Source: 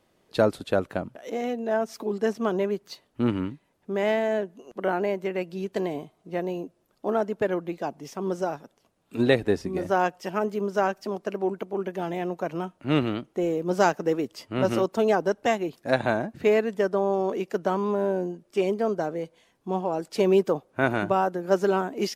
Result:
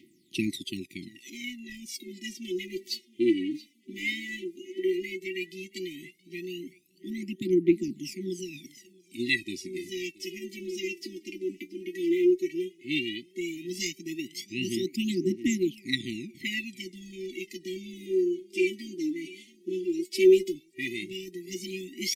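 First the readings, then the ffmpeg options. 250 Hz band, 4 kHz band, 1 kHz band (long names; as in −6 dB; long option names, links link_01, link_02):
−1.5 dB, +4.5 dB, below −40 dB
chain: -af "aecho=1:1:677|1354:0.0708|0.0205,areverse,acompressor=mode=upward:threshold=-29dB:ratio=2.5,areverse,highpass=300,aphaser=in_gain=1:out_gain=1:delay=3.5:decay=0.8:speed=0.13:type=triangular,afftfilt=real='re*(1-between(b*sr/4096,380,1900))':imag='im*(1-between(b*sr/4096,380,1900))':win_size=4096:overlap=0.75"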